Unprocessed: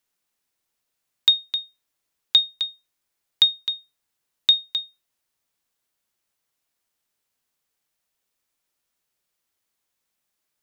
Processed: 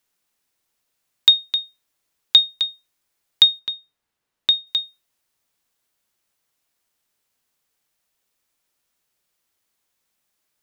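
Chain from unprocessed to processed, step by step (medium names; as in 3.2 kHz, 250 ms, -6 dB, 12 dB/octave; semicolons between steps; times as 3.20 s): 3.59–4.67 s: treble shelf 4.1 kHz -10.5 dB; trim +4 dB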